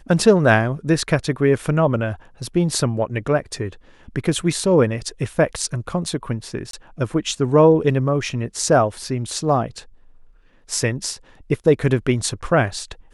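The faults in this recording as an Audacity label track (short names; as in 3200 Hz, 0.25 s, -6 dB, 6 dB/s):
6.710000	6.730000	gap 23 ms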